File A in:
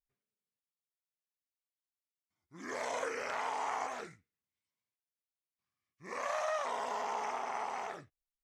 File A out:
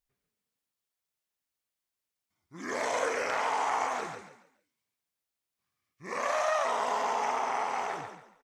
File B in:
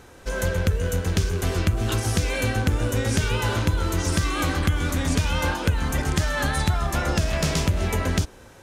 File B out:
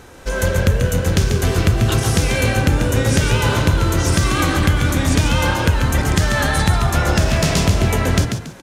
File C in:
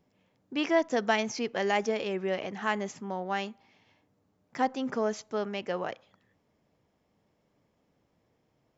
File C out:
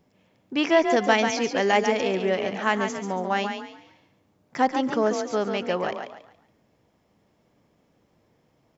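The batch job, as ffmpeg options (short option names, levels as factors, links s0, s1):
-filter_complex "[0:a]asplit=5[s0][s1][s2][s3][s4];[s1]adelay=140,afreqshift=33,volume=0.473[s5];[s2]adelay=280,afreqshift=66,volume=0.146[s6];[s3]adelay=420,afreqshift=99,volume=0.0457[s7];[s4]adelay=560,afreqshift=132,volume=0.0141[s8];[s0][s5][s6][s7][s8]amix=inputs=5:normalize=0,volume=2"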